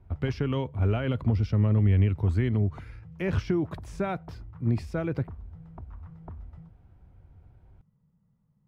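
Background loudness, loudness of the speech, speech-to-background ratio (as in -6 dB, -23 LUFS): -46.0 LUFS, -27.5 LUFS, 18.5 dB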